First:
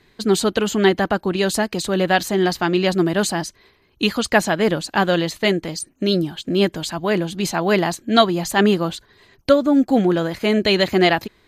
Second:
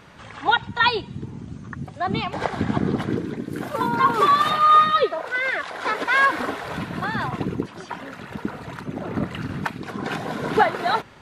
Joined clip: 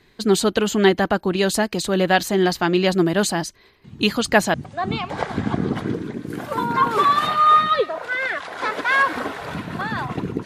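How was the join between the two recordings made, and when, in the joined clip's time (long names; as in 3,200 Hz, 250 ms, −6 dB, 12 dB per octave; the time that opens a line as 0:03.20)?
first
0:03.84: mix in second from 0:01.07 0.70 s −7 dB
0:04.54: continue with second from 0:01.77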